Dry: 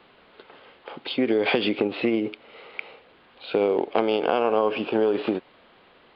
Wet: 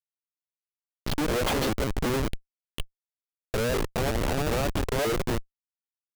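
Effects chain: repeated pitch sweeps +5.5 st, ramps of 0.187 s; Schmitt trigger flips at -25.5 dBFS; gain +2 dB

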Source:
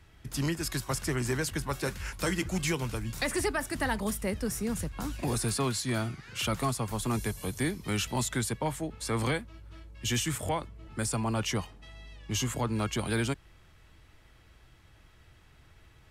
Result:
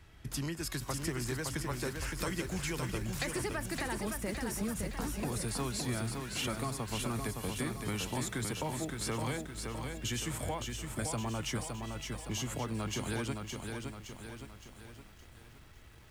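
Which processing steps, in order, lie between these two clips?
compressor 5:1, threshold -34 dBFS, peak gain reduction 9 dB; lo-fi delay 0.565 s, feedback 55%, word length 10-bit, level -4.5 dB

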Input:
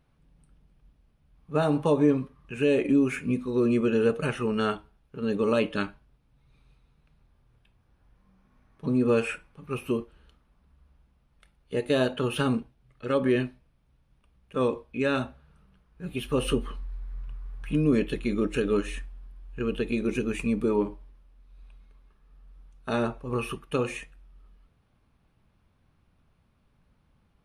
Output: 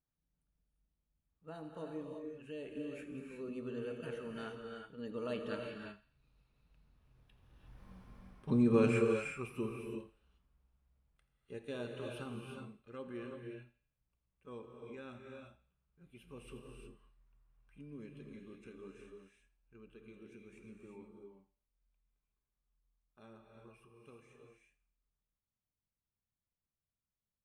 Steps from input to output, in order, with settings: Doppler pass-by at 7.89, 16 m/s, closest 3.1 m; thinning echo 84 ms, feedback 46%, high-pass 1200 Hz, level -17 dB; non-linear reverb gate 0.39 s rising, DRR 2 dB; gain +6.5 dB

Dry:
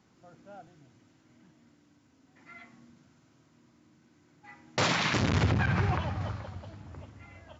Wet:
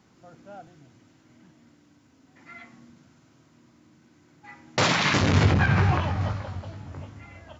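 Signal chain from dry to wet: 5.04–7.21 doubler 21 ms -5 dB; gain +5 dB

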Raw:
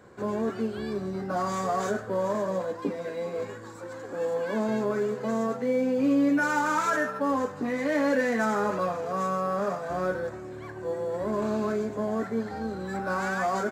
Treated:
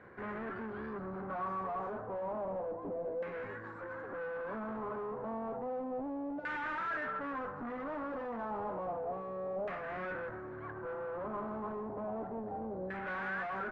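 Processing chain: tube stage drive 37 dB, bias 0.4; LFO low-pass saw down 0.31 Hz 620–2000 Hz; gain -3 dB

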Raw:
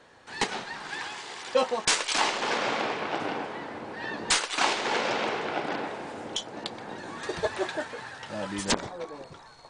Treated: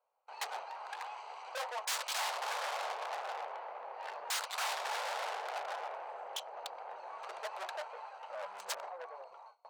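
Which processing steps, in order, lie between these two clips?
Wiener smoothing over 25 samples; gate with hold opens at -46 dBFS; tube stage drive 37 dB, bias 0.4; inverse Chebyshev high-pass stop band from 310 Hz, stop band 40 dB; gain +4 dB

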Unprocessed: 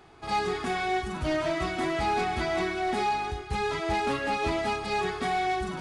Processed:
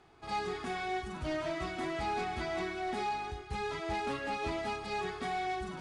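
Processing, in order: LPF 11000 Hz 12 dB/oct; gain -7.5 dB

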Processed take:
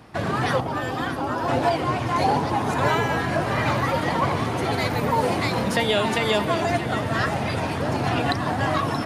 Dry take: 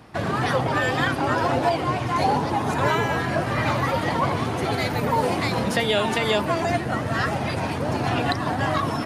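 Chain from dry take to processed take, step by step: 0.6–1.48 graphic EQ 125/500/2000/4000/8000 Hz -7/-5/-9/-4/-6 dB; on a send: split-band echo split 330 Hz, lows 0.436 s, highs 0.627 s, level -12.5 dB

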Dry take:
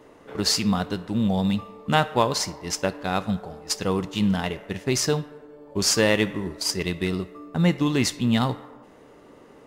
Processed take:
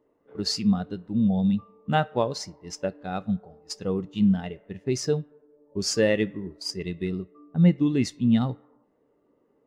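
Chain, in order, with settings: dynamic EQ 1000 Hz, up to -6 dB, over -45 dBFS, Q 4.8; spectral expander 1.5:1; gain -3 dB

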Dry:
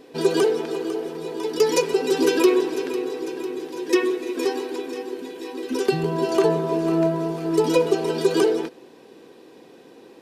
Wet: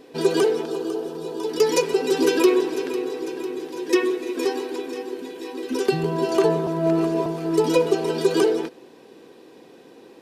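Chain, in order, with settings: 0.63–1.49 bell 2100 Hz -12 dB 0.45 oct; 6.67–7.26 reverse

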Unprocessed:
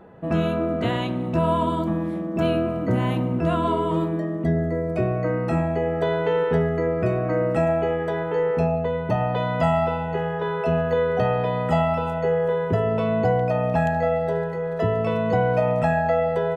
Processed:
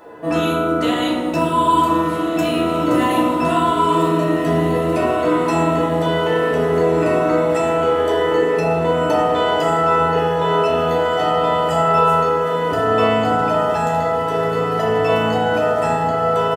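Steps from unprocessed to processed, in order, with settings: tone controls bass -15 dB, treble +13 dB; limiter -20.5 dBFS, peak gain reduction 9.5 dB; doubler 13 ms -7.5 dB; small resonant body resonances 1100/1800 Hz, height 6 dB; on a send: diffused feedback echo 1.648 s, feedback 56%, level -7 dB; on the sum: FDN reverb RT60 1.5 s, low-frequency decay 1.55×, high-frequency decay 0.45×, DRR -4 dB; gain +4.5 dB

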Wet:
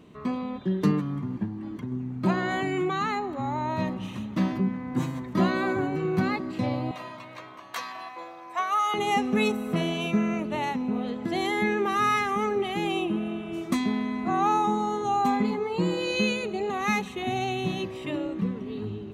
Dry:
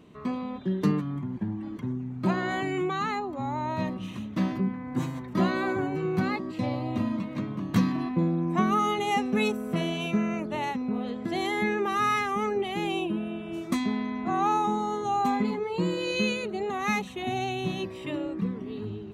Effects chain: 1.45–1.92 compressor 4:1, threshold -33 dBFS, peak gain reduction 5.5 dB; 6.91–8.94 HPF 640 Hz 24 dB/oct; reverb RT60 4.6 s, pre-delay 92 ms, DRR 19 dB; gain +1.5 dB

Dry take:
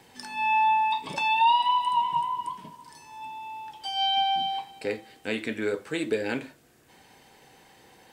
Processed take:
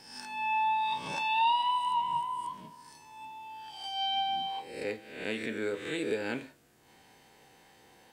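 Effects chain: spectral swells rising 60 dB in 0.76 s; gain -6.5 dB

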